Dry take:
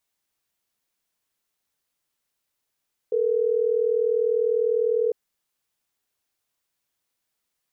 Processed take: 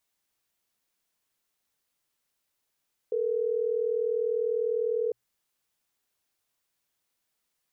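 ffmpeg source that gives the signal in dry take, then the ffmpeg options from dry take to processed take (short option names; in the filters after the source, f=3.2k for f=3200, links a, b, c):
-f lavfi -i "aevalsrc='0.0794*(sin(2*PI*440*t)+sin(2*PI*480*t))*clip(min(mod(t,6),2-mod(t,6))/0.005,0,1)':d=3.12:s=44100"
-af "alimiter=limit=-22dB:level=0:latency=1:release=113,bandreject=f=60:t=h:w=6,bandreject=f=120:t=h:w=6"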